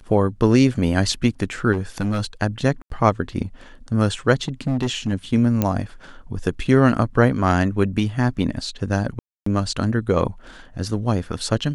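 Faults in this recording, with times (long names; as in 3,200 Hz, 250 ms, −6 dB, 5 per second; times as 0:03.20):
0:01.72–0:02.25: clipping −18 dBFS
0:02.82–0:02.90: drop-out 82 ms
0:04.35–0:05.14: clipping −17 dBFS
0:05.62: click −6 dBFS
0:09.19–0:09.46: drop-out 274 ms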